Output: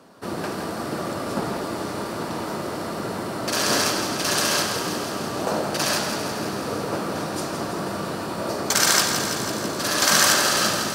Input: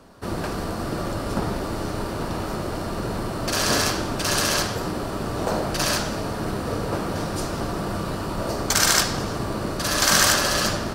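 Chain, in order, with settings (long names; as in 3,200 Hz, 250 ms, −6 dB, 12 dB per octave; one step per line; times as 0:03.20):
high-pass filter 160 Hz 12 dB per octave
feedback echo with a high-pass in the loop 165 ms, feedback 72%, level −8 dB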